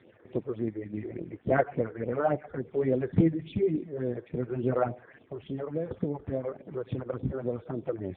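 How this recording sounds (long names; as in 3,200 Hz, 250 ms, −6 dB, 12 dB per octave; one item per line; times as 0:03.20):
phaser sweep stages 6, 3.5 Hz, lowest notch 180–1,800 Hz
AMR narrowband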